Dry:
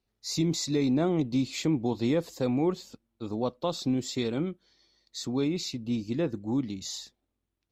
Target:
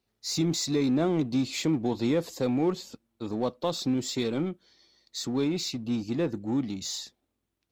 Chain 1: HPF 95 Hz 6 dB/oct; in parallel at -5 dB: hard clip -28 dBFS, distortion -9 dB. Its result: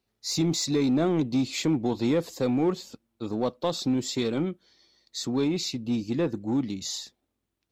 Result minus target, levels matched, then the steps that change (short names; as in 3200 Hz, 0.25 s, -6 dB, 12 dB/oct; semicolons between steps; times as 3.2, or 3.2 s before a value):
hard clip: distortion -5 dB
change: hard clip -37.5 dBFS, distortion -3 dB